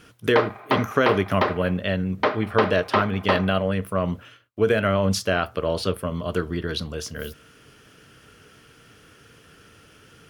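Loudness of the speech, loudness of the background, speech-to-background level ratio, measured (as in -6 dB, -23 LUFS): -24.5 LUFS, -26.0 LUFS, 1.5 dB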